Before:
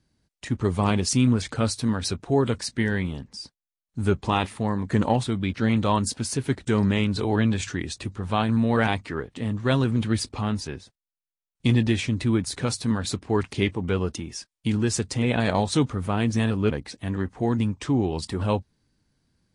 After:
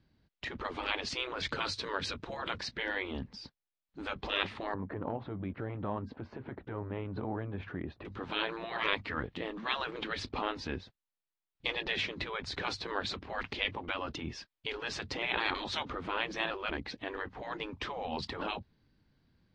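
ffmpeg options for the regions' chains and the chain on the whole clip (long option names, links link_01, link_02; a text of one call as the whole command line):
ffmpeg -i in.wav -filter_complex "[0:a]asettb=1/sr,asplit=3[link_01][link_02][link_03];[link_01]atrim=end=1.434[link_04];[link_02]atrim=start=1.43:end=2.37,asetpts=PTS-STARTPTS,afade=type=in:duration=0.004:curve=qsin,afade=type=out:start_time=0.936:duration=0.004:curve=qsin,highshelf=frequency=6000:gain=10,bandreject=frequency=750:width=5.4[link_05];[link_03]atrim=start=2.366[link_06];[link_04][link_05]acrossfade=duration=0.004:curve1=hsin:curve2=qsin[link_07];[link_07][link_06]acrossfade=duration=0.004:curve1=qsin:curve2=hsin,asettb=1/sr,asplit=3[link_08][link_09][link_10];[link_08]atrim=end=4.744[link_11];[link_09]atrim=start=4.74:end=8.05,asetpts=PTS-STARTPTS,afade=type=in:duration=0.004:curve=qsin,afade=type=out:start_time=3.306:duration=0.004:curve=qsin,lowpass=1100,acompressor=threshold=-28dB:ratio=4:attack=3.2:release=140:knee=1:detection=peak,lowshelf=frequency=170:gain=-9[link_12];[link_10]atrim=start=8.046[link_13];[link_11][link_12]acrossfade=duration=0.004:curve1=hsin:curve2=qsin[link_14];[link_14][link_13]acrossfade=duration=0.004:curve1=qsin:curve2=hsin,afftfilt=real='re*lt(hypot(re,im),0.141)':imag='im*lt(hypot(re,im),0.141)':win_size=1024:overlap=0.75,lowpass=frequency=4200:width=0.5412,lowpass=frequency=4200:width=1.3066" out.wav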